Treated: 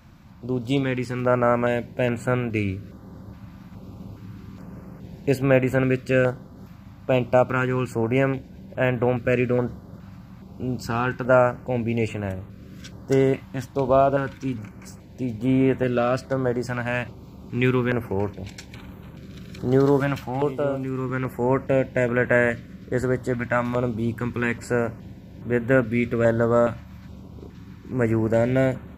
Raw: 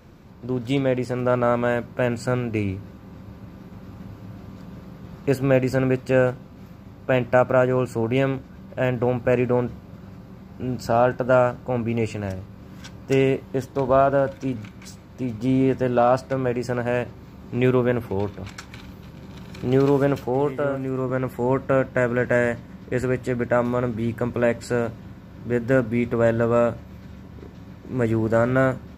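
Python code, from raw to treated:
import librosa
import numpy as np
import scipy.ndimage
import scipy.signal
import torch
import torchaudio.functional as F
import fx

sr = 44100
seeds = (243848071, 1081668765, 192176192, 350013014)

y = fx.dynamic_eq(x, sr, hz=2200.0, q=0.94, threshold_db=-38.0, ratio=4.0, max_db=5)
y = fx.filter_held_notch(y, sr, hz=2.4, low_hz=430.0, high_hz=5100.0)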